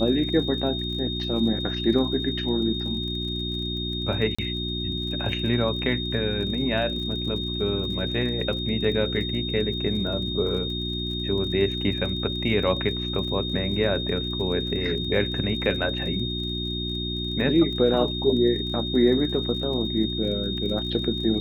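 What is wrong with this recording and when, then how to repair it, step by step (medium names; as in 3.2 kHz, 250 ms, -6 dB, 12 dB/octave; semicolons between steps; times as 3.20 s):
crackle 38 per s -35 dBFS
hum 60 Hz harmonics 6 -31 dBFS
whine 3.7 kHz -30 dBFS
4.35–4.38 s: dropout 35 ms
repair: de-click; de-hum 60 Hz, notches 6; band-stop 3.7 kHz, Q 30; interpolate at 4.35 s, 35 ms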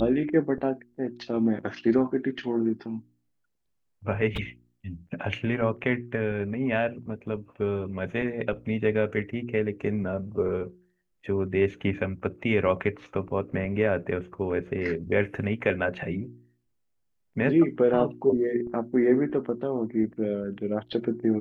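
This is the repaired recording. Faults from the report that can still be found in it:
nothing left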